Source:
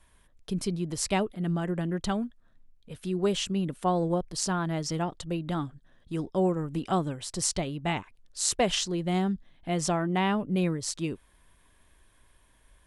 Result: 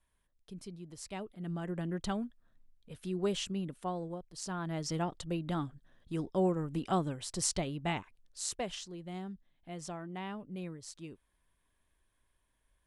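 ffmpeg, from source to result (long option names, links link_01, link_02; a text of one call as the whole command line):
ffmpeg -i in.wav -af "volume=7dB,afade=type=in:start_time=1.13:duration=0.75:silence=0.316228,afade=type=out:start_time=3.35:duration=0.92:silence=0.281838,afade=type=in:start_time=4.27:duration=0.69:silence=0.223872,afade=type=out:start_time=7.78:duration=0.99:silence=0.281838" out.wav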